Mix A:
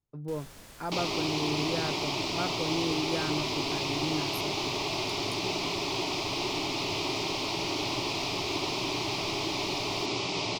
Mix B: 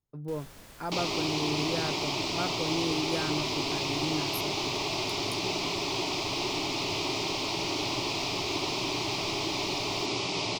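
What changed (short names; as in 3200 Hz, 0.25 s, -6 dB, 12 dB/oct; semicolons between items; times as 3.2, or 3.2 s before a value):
first sound: add high shelf 6300 Hz -7.5 dB; master: add high shelf 12000 Hz +11 dB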